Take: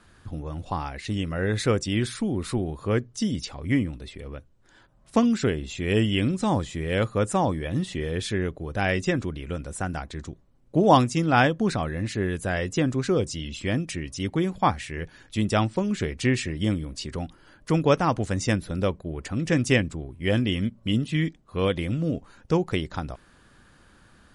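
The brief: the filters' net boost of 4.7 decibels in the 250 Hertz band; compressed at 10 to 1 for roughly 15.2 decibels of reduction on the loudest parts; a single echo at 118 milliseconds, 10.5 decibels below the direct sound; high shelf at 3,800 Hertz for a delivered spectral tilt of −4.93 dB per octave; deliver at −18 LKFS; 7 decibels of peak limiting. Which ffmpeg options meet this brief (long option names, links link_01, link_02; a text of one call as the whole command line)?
ffmpeg -i in.wav -af "equalizer=frequency=250:width_type=o:gain=6,highshelf=frequency=3800:gain=7,acompressor=threshold=-27dB:ratio=10,alimiter=limit=-23.5dB:level=0:latency=1,aecho=1:1:118:0.299,volume=15.5dB" out.wav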